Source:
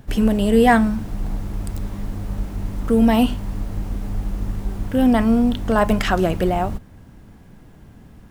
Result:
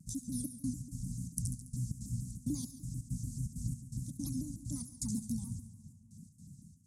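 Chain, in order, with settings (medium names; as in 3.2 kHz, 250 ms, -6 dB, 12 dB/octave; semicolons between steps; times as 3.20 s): trance gate "xx.xx..xx.xx" 136 bpm -60 dB; level rider gain up to 7 dB; reverb removal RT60 0.93 s; on a send at -14 dB: reverberation RT60 2.3 s, pre-delay 79 ms; on the sum: tape speed +21%; inverse Chebyshev band-stop 390–3000 Hz, stop band 50 dB; cabinet simulation 240–9600 Hz, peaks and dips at 330 Hz -7 dB, 600 Hz +3 dB, 1.3 kHz -4 dB, 3.1 kHz -9 dB; feedback echo behind a high-pass 70 ms, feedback 56%, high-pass 5.5 kHz, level -7.5 dB; vibrato with a chosen wave saw down 6.8 Hz, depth 160 cents; trim +2 dB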